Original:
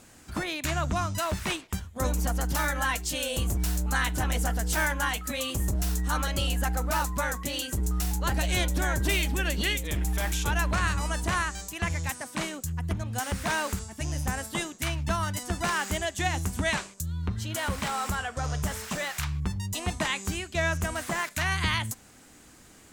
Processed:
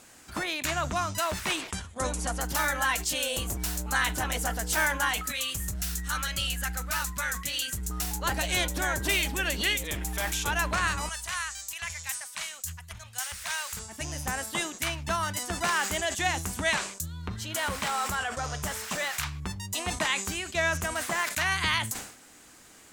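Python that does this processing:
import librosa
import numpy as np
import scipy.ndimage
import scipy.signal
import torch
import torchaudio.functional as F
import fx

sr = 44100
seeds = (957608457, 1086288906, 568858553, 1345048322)

y = fx.resample_bad(x, sr, factor=2, down='none', up='filtered', at=(1.71, 2.4))
y = fx.band_shelf(y, sr, hz=510.0, db=-10.5, octaves=2.4, at=(5.29, 7.9))
y = fx.tone_stack(y, sr, knobs='10-0-10', at=(11.09, 13.77))
y = fx.low_shelf(y, sr, hz=320.0, db=-10.0)
y = fx.sustainer(y, sr, db_per_s=93.0)
y = F.gain(torch.from_numpy(y), 2.0).numpy()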